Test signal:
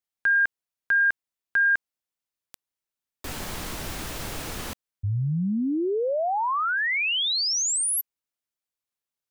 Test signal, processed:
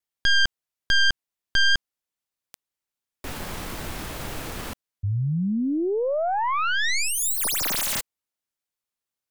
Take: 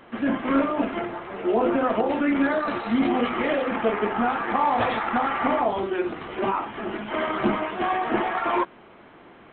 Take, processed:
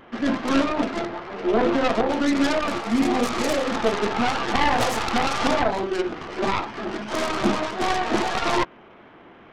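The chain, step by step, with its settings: tracing distortion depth 0.45 ms; vibrato 1.7 Hz 23 cents; trim +1 dB

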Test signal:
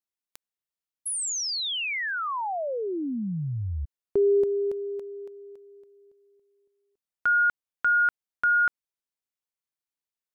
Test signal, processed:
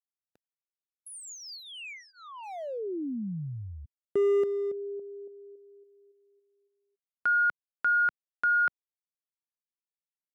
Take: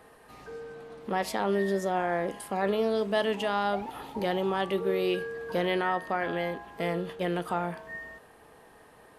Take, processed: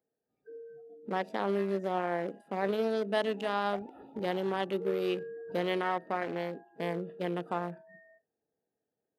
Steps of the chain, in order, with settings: local Wiener filter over 41 samples; Bessel high-pass 160 Hz; spectral noise reduction 25 dB; trim -1.5 dB

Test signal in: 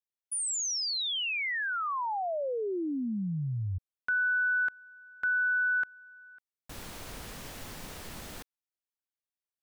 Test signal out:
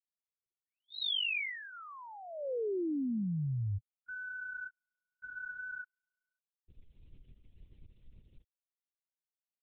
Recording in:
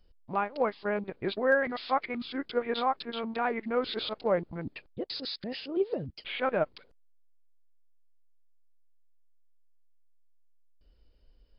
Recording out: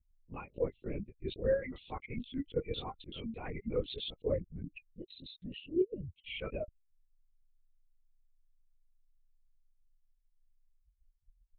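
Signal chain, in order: expander on every frequency bin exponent 2; LPC vocoder at 8 kHz whisper; high-order bell 1.1 kHz -14.5 dB

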